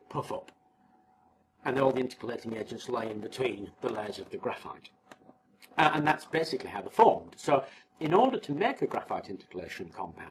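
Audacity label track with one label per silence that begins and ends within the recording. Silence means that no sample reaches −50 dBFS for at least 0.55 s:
0.500000	1.630000	silence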